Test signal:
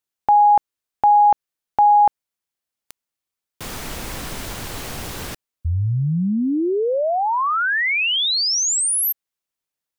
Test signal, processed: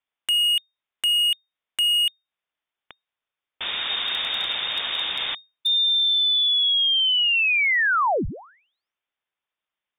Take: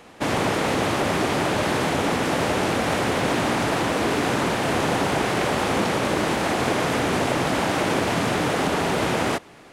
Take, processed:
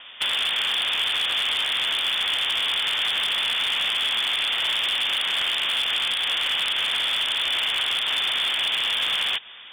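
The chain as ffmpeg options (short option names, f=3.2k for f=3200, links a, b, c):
-af "lowpass=f=3.1k:t=q:w=0.5098,lowpass=f=3.1k:t=q:w=0.6013,lowpass=f=3.1k:t=q:w=0.9,lowpass=f=3.1k:t=q:w=2.563,afreqshift=-3700,acompressor=threshold=-23dB:ratio=5:attack=3.9:release=305:knee=1:detection=rms,aeval=exprs='0.0841*(abs(mod(val(0)/0.0841+3,4)-2)-1)':c=same,volume=4.5dB"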